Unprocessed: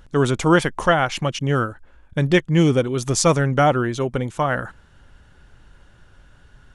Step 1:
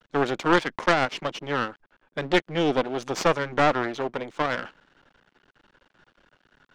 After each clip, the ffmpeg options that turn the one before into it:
-filter_complex "[0:a]aeval=exprs='max(val(0),0)':c=same,acrossover=split=200 5700:gain=0.1 1 0.0891[s0][s1][s2];[s0][s1][s2]amix=inputs=3:normalize=0,aeval=exprs='0.473*(cos(1*acos(clip(val(0)/0.473,-1,1)))-cos(1*PI/2))+0.0841*(cos(4*acos(clip(val(0)/0.473,-1,1)))-cos(4*PI/2))':c=same"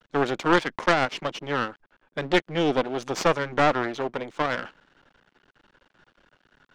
-af anull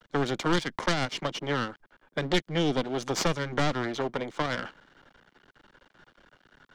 -filter_complex "[0:a]bandreject=f=2600:w=13,acrossover=split=240|3000[s0][s1][s2];[s1]acompressor=threshold=0.0316:ratio=6[s3];[s0][s3][s2]amix=inputs=3:normalize=0,volume=1.33"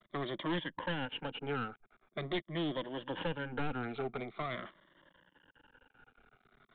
-af "afftfilt=real='re*pow(10,13/40*sin(2*PI*(1.2*log(max(b,1)*sr/1024/100)/log(2)-(-0.44)*(pts-256)/sr)))':imag='im*pow(10,13/40*sin(2*PI*(1.2*log(max(b,1)*sr/1024/100)/log(2)-(-0.44)*(pts-256)/sr)))':win_size=1024:overlap=0.75,aresample=8000,asoftclip=type=tanh:threshold=0.0944,aresample=44100,volume=0.376"

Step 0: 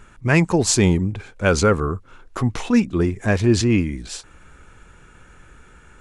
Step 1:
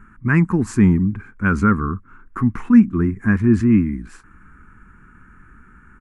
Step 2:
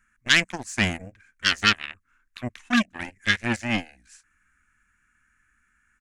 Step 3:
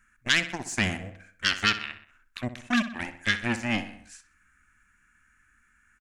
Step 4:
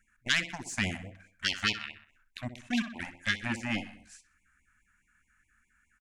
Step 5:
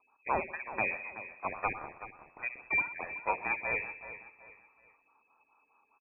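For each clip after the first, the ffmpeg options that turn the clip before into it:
-af "firequalizer=gain_entry='entry(150,0);entry(210,8);entry(570,-20);entry(1100,2);entry(1600,2);entry(3500,-24);entry(10000,-12)':delay=0.05:min_phase=1"
-af "aeval=exprs='0.794*(cos(1*acos(clip(val(0)/0.794,-1,1)))-cos(1*PI/2))+0.0141*(cos(3*acos(clip(val(0)/0.794,-1,1)))-cos(3*PI/2))+0.126*(cos(7*acos(clip(val(0)/0.794,-1,1)))-cos(7*PI/2))':c=same,aexciter=amount=6:drive=7.6:freq=2100,equalizer=f=160:t=o:w=0.67:g=-7,equalizer=f=400:t=o:w=0.67:g=-6,equalizer=f=1600:t=o:w=0.67:g=10,equalizer=f=6300:t=o:w=0.67:g=6,volume=0.335"
-filter_complex "[0:a]asplit=2[s0][s1];[s1]adelay=63,lowpass=f=4300:p=1,volume=0.237,asplit=2[s2][s3];[s3]adelay=63,lowpass=f=4300:p=1,volume=0.47,asplit=2[s4][s5];[s5]adelay=63,lowpass=f=4300:p=1,volume=0.47,asplit=2[s6][s7];[s7]adelay=63,lowpass=f=4300:p=1,volume=0.47,asplit=2[s8][s9];[s9]adelay=63,lowpass=f=4300:p=1,volume=0.47[s10];[s0][s2][s4][s6][s8][s10]amix=inputs=6:normalize=0,acompressor=threshold=0.02:ratio=1.5,volume=1.33"
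-af "afftfilt=real='re*(1-between(b*sr/1024,350*pow(1500/350,0.5+0.5*sin(2*PI*4.8*pts/sr))/1.41,350*pow(1500/350,0.5+0.5*sin(2*PI*4.8*pts/sr))*1.41))':imag='im*(1-between(b*sr/1024,350*pow(1500/350,0.5+0.5*sin(2*PI*4.8*pts/sr))/1.41,350*pow(1500/350,0.5+0.5*sin(2*PI*4.8*pts/sr))*1.41))':win_size=1024:overlap=0.75,volume=0.596"
-af "aecho=1:1:377|754|1131:0.224|0.0761|0.0259,lowpass=f=2200:t=q:w=0.5098,lowpass=f=2200:t=q:w=0.6013,lowpass=f=2200:t=q:w=0.9,lowpass=f=2200:t=q:w=2.563,afreqshift=-2600"

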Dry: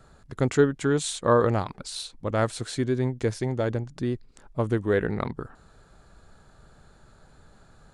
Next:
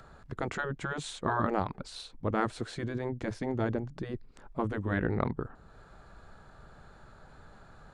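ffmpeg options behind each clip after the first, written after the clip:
-filter_complex "[0:a]lowpass=f=1600:p=1,afftfilt=real='re*lt(hypot(re,im),0.316)':imag='im*lt(hypot(re,im),0.316)':win_size=1024:overlap=0.75,acrossover=split=700[s0][s1];[s1]acompressor=mode=upward:threshold=0.00282:ratio=2.5[s2];[s0][s2]amix=inputs=2:normalize=0"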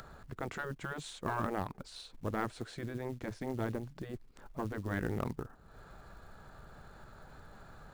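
-af "aeval=exprs='(tanh(7.94*val(0)+0.45)-tanh(0.45))/7.94':c=same,acrusher=bits=6:mode=log:mix=0:aa=0.000001,acompressor=mode=upward:threshold=0.01:ratio=2.5,volume=0.631"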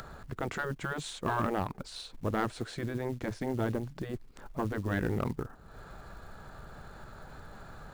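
-af "asoftclip=type=tanh:threshold=0.0631,volume=1.88"

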